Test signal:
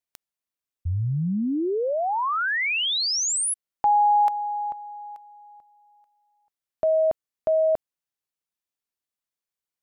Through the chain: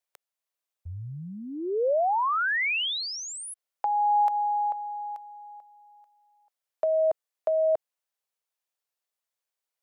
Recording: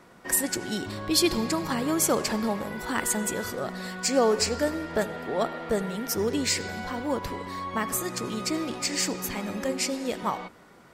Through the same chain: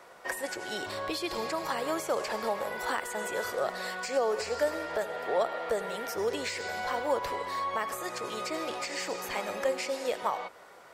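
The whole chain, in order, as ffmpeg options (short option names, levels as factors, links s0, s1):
-filter_complex "[0:a]acrossover=split=290[s0][s1];[s1]acompressor=threshold=0.0316:ratio=2:attack=35:release=152:knee=2.83:detection=peak[s2];[s0][s2]amix=inputs=2:normalize=0,alimiter=limit=0.106:level=0:latency=1:release=350,acrossover=split=3400[s3][s4];[s4]acompressor=threshold=0.00891:ratio=4:attack=1:release=60[s5];[s3][s5]amix=inputs=2:normalize=0,lowshelf=f=360:t=q:w=1.5:g=-12.5,volume=1.19"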